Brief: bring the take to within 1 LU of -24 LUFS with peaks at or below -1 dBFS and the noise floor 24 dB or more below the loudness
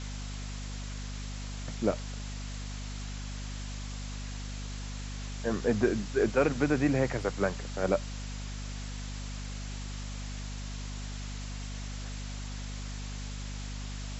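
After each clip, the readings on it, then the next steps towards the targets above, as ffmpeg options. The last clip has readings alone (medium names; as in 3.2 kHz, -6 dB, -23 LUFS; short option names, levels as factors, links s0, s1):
hum 50 Hz; highest harmonic 250 Hz; hum level -36 dBFS; noise floor -38 dBFS; noise floor target -59 dBFS; loudness -34.5 LUFS; peak level -13.0 dBFS; loudness target -24.0 LUFS
-> -af "bandreject=f=50:t=h:w=6,bandreject=f=100:t=h:w=6,bandreject=f=150:t=h:w=6,bandreject=f=200:t=h:w=6,bandreject=f=250:t=h:w=6"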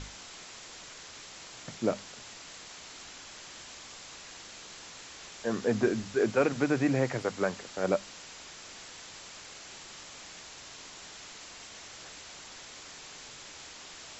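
hum not found; noise floor -48 dBFS; noise floor target -60 dBFS
-> -af "afftdn=nr=12:nf=-48"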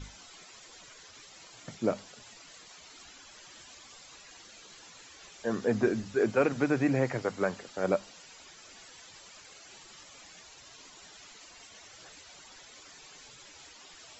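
noise floor -53 dBFS; noise floor target -54 dBFS
-> -af "afftdn=nr=6:nf=-53"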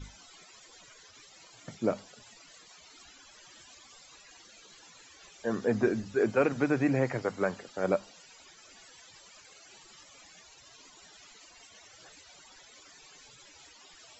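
noise floor -56 dBFS; loudness -30.0 LUFS; peak level -13.5 dBFS; loudness target -24.0 LUFS
-> -af "volume=2"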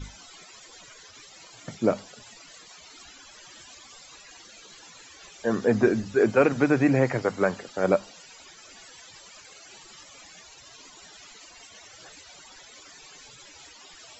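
loudness -24.0 LUFS; peak level -7.5 dBFS; noise floor -50 dBFS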